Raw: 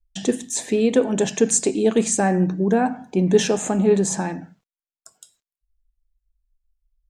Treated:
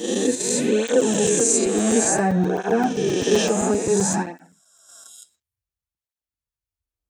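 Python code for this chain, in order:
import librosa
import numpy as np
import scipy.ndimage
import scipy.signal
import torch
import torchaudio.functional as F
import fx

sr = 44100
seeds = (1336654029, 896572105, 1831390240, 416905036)

p1 = fx.spec_swells(x, sr, rise_s=1.74)
p2 = scipy.signal.sosfilt(scipy.signal.butter(2, 120.0, 'highpass', fs=sr, output='sos'), p1)
p3 = fx.level_steps(p2, sr, step_db=23)
p4 = p2 + (p3 * 10.0 ** (-0.5 / 20.0))
p5 = fx.buffer_crackle(p4, sr, first_s=0.88, period_s=0.13, block=256, kind='zero')
p6 = fx.flanger_cancel(p5, sr, hz=0.57, depth_ms=7.8)
y = p6 * 10.0 ** (-3.5 / 20.0)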